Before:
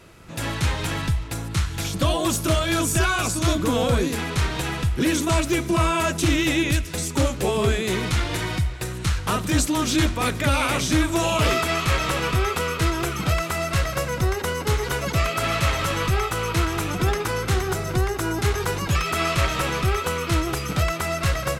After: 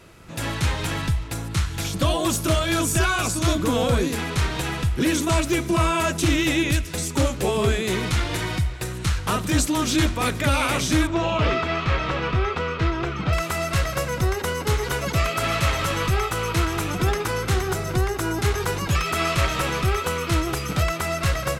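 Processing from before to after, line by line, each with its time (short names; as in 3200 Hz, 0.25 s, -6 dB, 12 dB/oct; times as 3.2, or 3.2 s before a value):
11.07–13.33 air absorption 200 m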